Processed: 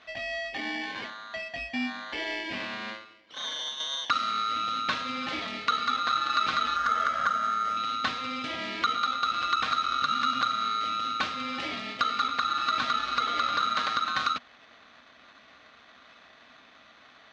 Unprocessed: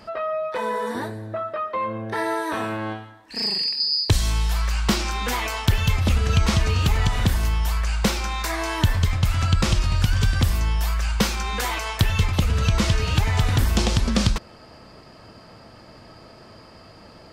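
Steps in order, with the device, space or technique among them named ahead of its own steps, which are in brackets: ring modulator pedal into a guitar cabinet (polarity switched at an audio rate 1.3 kHz; cabinet simulation 100–4200 Hz, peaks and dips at 100 Hz -4 dB, 170 Hz -5 dB, 250 Hz +6 dB, 390 Hz -9 dB, 910 Hz -7 dB, 1.5 kHz -3 dB); 6.76–7.77 s: graphic EQ with 31 bands 315 Hz -12 dB, 630 Hz +5 dB, 1.6 kHz +7 dB, 2.5 kHz -9 dB, 4 kHz -12 dB, 12.5 kHz +10 dB; trim -6 dB

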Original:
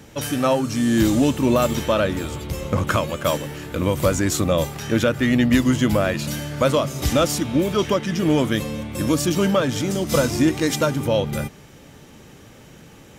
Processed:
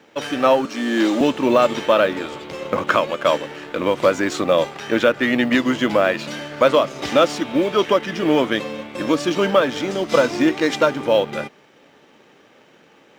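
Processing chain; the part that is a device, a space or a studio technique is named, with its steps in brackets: phone line with mismatched companding (band-pass 340–3600 Hz; companding laws mixed up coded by A); 0.65–1.21 s: high-pass 210 Hz 24 dB/octave; trim +5.5 dB

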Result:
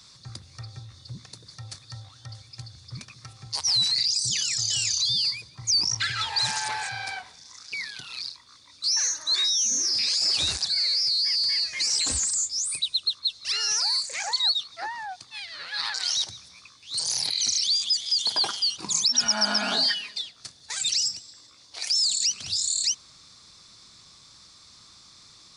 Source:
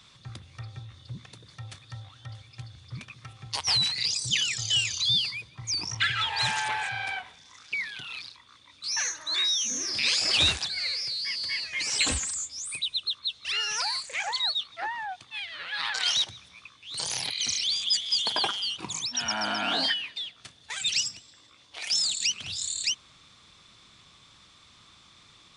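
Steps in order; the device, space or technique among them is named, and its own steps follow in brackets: over-bright horn tweeter (resonant high shelf 3.8 kHz +6 dB, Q 3; peak limiter -16 dBFS, peak gain reduction 11.5 dB); 18.85–20.22 s: comb 4.8 ms, depth 86%

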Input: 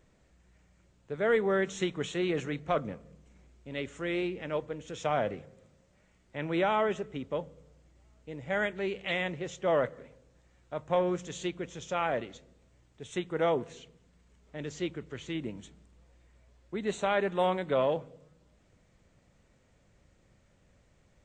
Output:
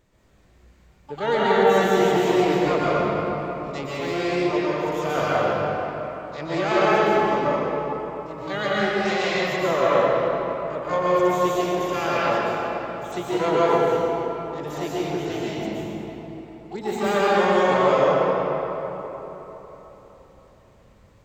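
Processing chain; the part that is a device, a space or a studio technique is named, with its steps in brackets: 8.44–9.56 s: hum notches 60/120/180/240/300/360/420 Hz; dynamic bell 410 Hz, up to +3 dB, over -41 dBFS, Q 2.4; shimmer-style reverb (harmony voices +12 st -7 dB; reverberation RT60 3.9 s, pre-delay 115 ms, DRR -8 dB)

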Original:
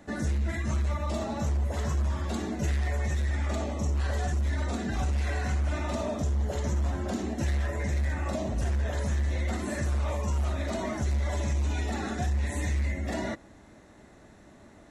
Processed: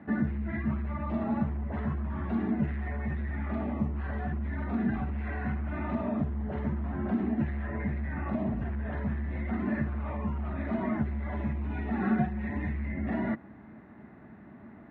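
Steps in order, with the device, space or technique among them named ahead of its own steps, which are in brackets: bass amplifier (compression, threshold -29 dBFS, peak gain reduction 5.5 dB; cabinet simulation 75–2200 Hz, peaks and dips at 150 Hz +5 dB, 220 Hz +8 dB, 530 Hz -8 dB); 12.01–12.49 s: comb 5.4 ms, depth 84%; trim +1.5 dB

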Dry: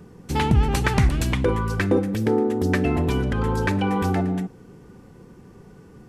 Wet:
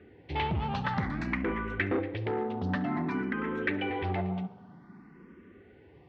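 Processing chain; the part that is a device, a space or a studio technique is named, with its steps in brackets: 2.75–3.90 s: high-pass 150 Hz 12 dB/octave; barber-pole phaser into a guitar amplifier (barber-pole phaser +0.53 Hz; saturation -20 dBFS, distortion -12 dB; cabinet simulation 85–3500 Hz, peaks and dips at 130 Hz -8 dB, 470 Hz -6 dB, 2 kHz +7 dB); tape echo 69 ms, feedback 79%, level -16.5 dB, low-pass 2.6 kHz; trim -2 dB

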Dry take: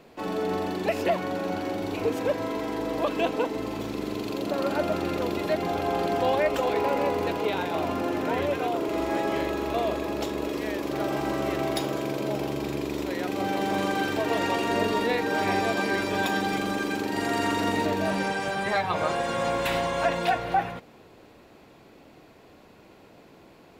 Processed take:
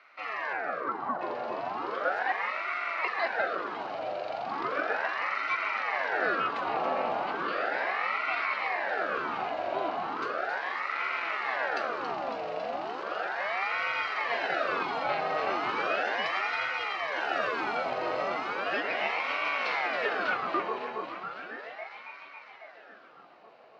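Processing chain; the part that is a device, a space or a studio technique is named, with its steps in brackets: 0.53–1.21 s: Chebyshev low-pass 1.6 kHz, order 10; echo whose repeats swap between lows and highs 138 ms, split 930 Hz, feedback 86%, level -6 dB; voice changer toy (ring modulator with a swept carrier 1 kHz, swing 70%, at 0.36 Hz; cabinet simulation 460–4100 Hz, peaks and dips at 680 Hz +3 dB, 960 Hz -6 dB, 1.9 kHz -4 dB, 3.4 kHz -8 dB)

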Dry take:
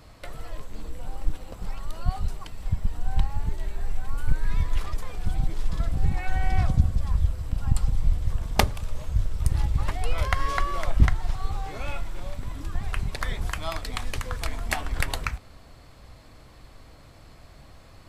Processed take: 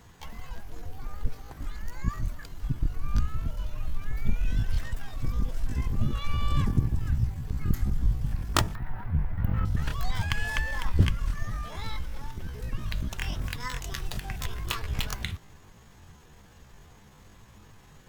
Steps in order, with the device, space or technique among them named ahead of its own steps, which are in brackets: 8.77–9.66 s: FFT filter 240 Hz 0 dB, 560 Hz +6 dB, 1.2 kHz +6 dB, 4.6 kHz -26 dB, 12 kHz -1 dB; chipmunk voice (pitch shift +7.5 st); trim -3.5 dB

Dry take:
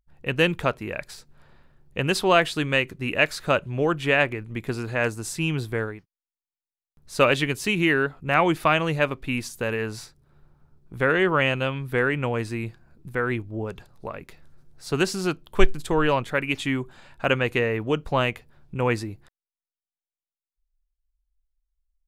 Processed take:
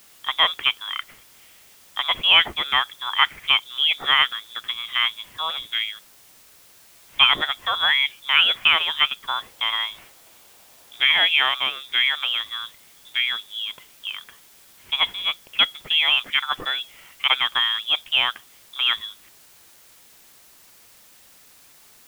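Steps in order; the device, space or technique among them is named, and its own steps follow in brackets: scrambled radio voice (band-pass 330–3100 Hz; frequency inversion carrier 3.7 kHz; white noise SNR 27 dB); 9.28–11.32 s: peaking EQ 660 Hz +7 dB 1.3 oct; trim +3.5 dB

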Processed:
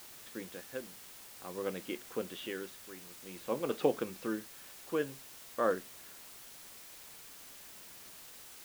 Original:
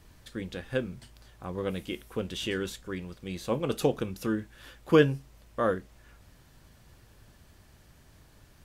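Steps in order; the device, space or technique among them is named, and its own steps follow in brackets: shortwave radio (band-pass 260–2700 Hz; tremolo 0.51 Hz, depth 71%; white noise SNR 12 dB); trim -2 dB

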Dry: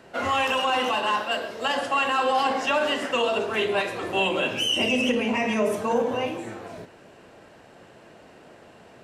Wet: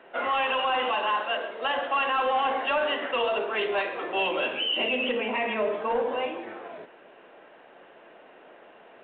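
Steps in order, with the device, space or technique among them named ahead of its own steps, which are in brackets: telephone (band-pass 380–3400 Hz; saturation -17.5 dBFS, distortion -20 dB; µ-law 64 kbps 8 kHz)

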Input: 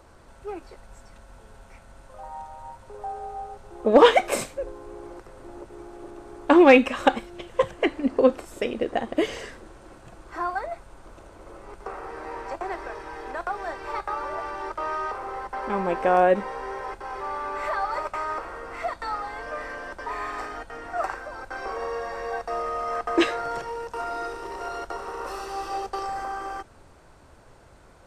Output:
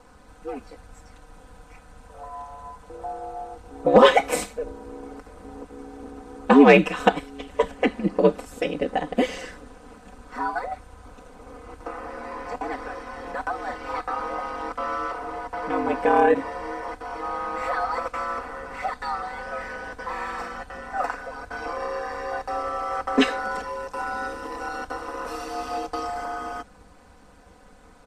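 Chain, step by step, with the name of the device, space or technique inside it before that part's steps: ring-modulated robot voice (ring modulator 73 Hz; comb 4 ms, depth 93%); trim +1.5 dB

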